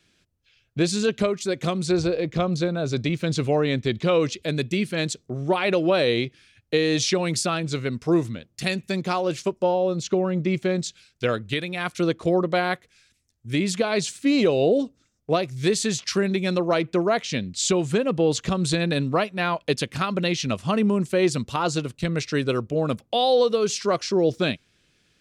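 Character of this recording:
background noise floor −69 dBFS
spectral slope −5.0 dB per octave

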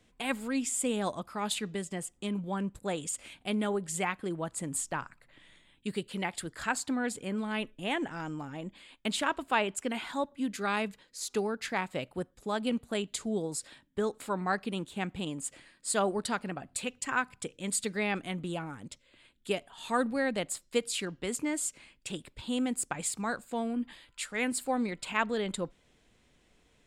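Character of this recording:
background noise floor −67 dBFS
spectral slope −3.5 dB per octave

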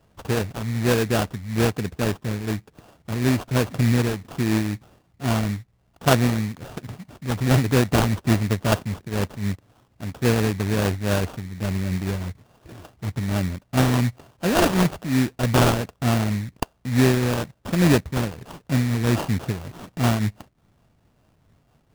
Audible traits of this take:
a buzz of ramps at a fixed pitch in blocks of 16 samples
phaser sweep stages 6, 1.2 Hz, lowest notch 690–2,200 Hz
aliases and images of a low sample rate 2,100 Hz, jitter 20%
amplitude modulation by smooth noise

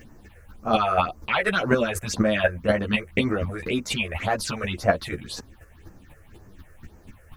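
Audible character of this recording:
a quantiser's noise floor 12 bits, dither triangular
phaser sweep stages 6, 1.9 Hz, lowest notch 230–3,500 Hz
chopped level 4.1 Hz, depth 60%, duty 10%
a shimmering, thickened sound

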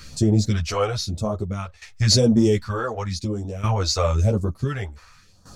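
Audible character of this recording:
phaser sweep stages 2, 0.96 Hz, lowest notch 170–2,200 Hz
tremolo saw down 0.55 Hz, depth 85%
a shimmering, thickened sound

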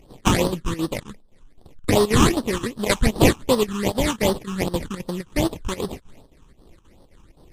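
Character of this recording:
chopped level 3.8 Hz, depth 65%, duty 80%
aliases and images of a low sample rate 1,500 Hz, jitter 20%
phaser sweep stages 8, 2.6 Hz, lowest notch 580–2,300 Hz
MP3

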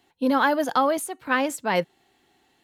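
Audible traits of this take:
background noise floor −66 dBFS
spectral slope −3.5 dB per octave

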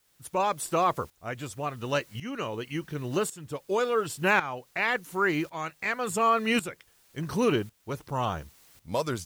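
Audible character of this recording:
a quantiser's noise floor 10 bits, dither triangular
tremolo saw up 0.91 Hz, depth 80%

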